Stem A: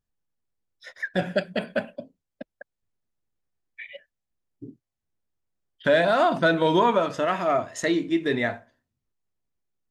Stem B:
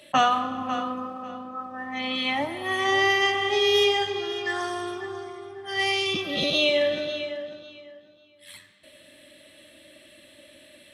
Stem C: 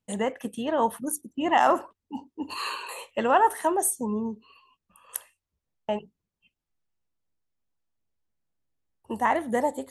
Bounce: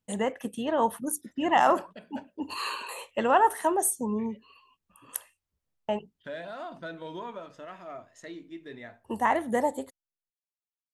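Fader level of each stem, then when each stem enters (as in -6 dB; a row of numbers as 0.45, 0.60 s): -19.0 dB, off, -1.0 dB; 0.40 s, off, 0.00 s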